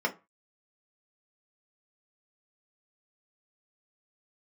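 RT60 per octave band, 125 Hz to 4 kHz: 0.30, 0.25, 0.25, 0.30, 0.25, 0.15 s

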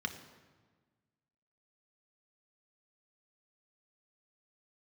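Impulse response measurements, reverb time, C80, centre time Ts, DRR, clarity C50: 1.4 s, 12.0 dB, 15 ms, 5.5 dB, 10.5 dB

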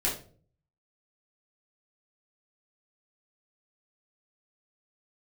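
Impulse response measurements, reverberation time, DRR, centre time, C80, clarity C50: 0.45 s, -6.0 dB, 30 ms, 12.5 dB, 7.0 dB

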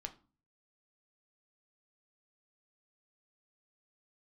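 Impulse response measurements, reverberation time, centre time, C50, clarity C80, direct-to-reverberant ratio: 0.35 s, 6 ms, 16.0 dB, 21.5 dB, 5.5 dB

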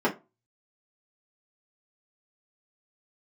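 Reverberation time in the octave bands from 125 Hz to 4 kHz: 0.35, 0.25, 0.25, 0.25, 0.20, 0.15 s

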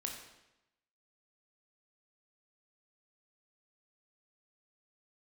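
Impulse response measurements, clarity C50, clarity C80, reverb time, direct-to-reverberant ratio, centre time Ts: 5.0 dB, 7.0 dB, 0.90 s, 1.0 dB, 35 ms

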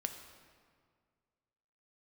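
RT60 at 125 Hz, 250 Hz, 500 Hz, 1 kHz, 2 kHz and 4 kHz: 2.3, 2.1, 2.0, 1.9, 1.6, 1.3 s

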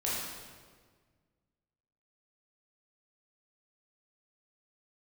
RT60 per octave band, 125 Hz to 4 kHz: 2.2, 2.0, 1.8, 1.5, 1.4, 1.2 s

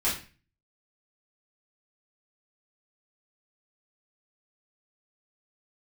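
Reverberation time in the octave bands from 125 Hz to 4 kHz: 0.60, 0.45, 0.35, 0.35, 0.40, 0.35 s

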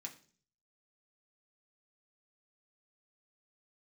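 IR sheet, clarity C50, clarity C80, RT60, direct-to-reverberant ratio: 13.5 dB, 17.5 dB, 0.45 s, 0.0 dB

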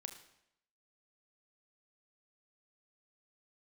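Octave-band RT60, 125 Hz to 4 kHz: 0.75, 0.80, 0.80, 0.75, 0.75, 0.70 s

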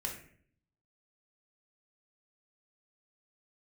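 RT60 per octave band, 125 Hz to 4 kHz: 0.95, 0.80, 0.65, 0.45, 0.55, 0.40 s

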